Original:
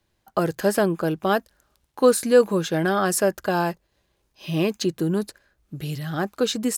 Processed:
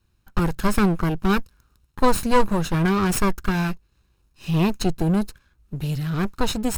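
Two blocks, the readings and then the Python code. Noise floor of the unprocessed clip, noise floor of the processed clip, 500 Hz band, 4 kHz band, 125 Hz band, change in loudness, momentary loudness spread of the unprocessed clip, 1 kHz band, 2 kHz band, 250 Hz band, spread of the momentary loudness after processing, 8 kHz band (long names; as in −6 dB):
−72 dBFS, −66 dBFS, −5.5 dB, −0.5 dB, +5.5 dB, 0.0 dB, 13 LU, +2.0 dB, 0.0 dB, +2.5 dB, 9 LU, −3.0 dB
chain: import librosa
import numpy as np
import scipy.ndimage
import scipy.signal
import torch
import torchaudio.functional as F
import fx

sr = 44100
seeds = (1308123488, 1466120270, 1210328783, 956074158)

y = fx.lower_of_two(x, sr, delay_ms=0.75)
y = fx.low_shelf(y, sr, hz=150.0, db=11.0)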